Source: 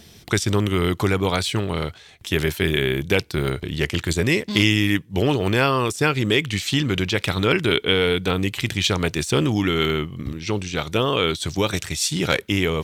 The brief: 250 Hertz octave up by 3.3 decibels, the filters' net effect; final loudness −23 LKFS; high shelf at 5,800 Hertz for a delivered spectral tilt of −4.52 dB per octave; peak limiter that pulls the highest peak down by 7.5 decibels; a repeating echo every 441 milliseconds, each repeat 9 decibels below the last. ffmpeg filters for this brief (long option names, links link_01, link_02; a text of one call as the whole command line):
ffmpeg -i in.wav -af "equalizer=frequency=250:width_type=o:gain=4.5,highshelf=frequency=5800:gain=6.5,alimiter=limit=-8.5dB:level=0:latency=1,aecho=1:1:441|882|1323|1764:0.355|0.124|0.0435|0.0152,volume=-2dB" out.wav